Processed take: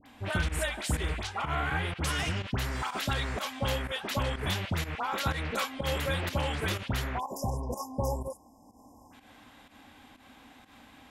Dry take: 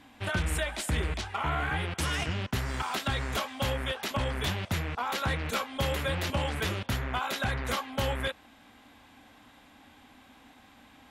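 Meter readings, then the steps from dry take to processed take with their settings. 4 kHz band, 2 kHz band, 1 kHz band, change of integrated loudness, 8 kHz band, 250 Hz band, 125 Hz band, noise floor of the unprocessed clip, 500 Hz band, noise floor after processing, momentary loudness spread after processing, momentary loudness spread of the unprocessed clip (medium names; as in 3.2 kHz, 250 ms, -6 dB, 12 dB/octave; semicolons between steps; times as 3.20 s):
-1.0 dB, -1.0 dB, -1.0 dB, -0.5 dB, -0.5 dB, -0.5 dB, -0.5 dB, -57 dBFS, -0.5 dB, -57 dBFS, 4 LU, 2 LU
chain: spectral selection erased 7.15–9.08 s, 1.1–4.9 kHz; upward compressor, threshold -49 dBFS; phase dispersion highs, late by 61 ms, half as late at 1.4 kHz; volume shaper 124 bpm, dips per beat 1, -13 dB, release 108 ms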